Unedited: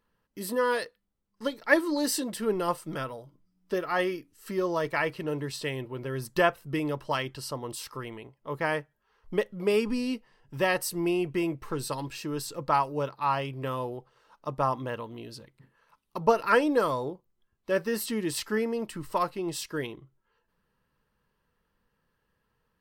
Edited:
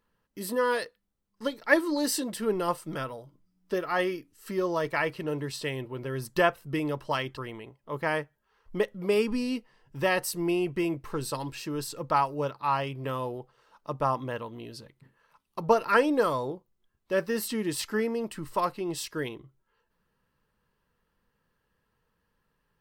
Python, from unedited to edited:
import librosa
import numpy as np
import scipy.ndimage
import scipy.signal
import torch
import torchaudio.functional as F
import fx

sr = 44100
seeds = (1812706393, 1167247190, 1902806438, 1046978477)

y = fx.edit(x, sr, fx.cut(start_s=7.37, length_s=0.58), tone=tone)